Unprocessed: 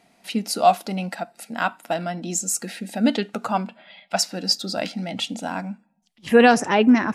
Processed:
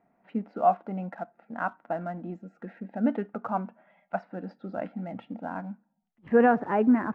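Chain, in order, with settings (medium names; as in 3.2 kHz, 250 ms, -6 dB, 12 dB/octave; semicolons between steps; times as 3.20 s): low-pass 1.6 kHz 24 dB/octave; in parallel at -11.5 dB: crossover distortion -42 dBFS; on the sum: trim -8 dB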